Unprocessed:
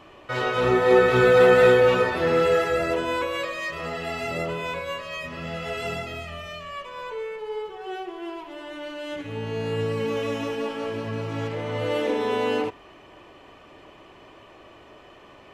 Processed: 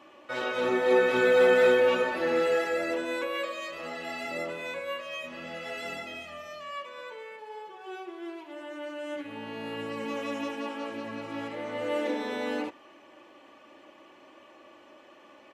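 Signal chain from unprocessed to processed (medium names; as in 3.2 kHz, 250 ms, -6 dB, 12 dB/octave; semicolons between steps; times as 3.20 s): high-pass 200 Hz 12 dB/octave; comb 3.5 ms, depth 59%; trim -6 dB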